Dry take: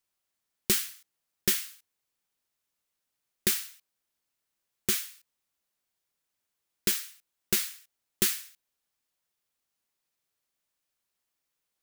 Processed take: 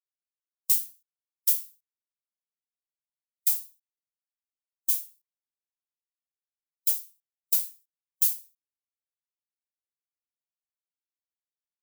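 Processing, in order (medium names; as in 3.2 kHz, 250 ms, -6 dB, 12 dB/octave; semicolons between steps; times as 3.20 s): differentiator; spectral contrast expander 1.5:1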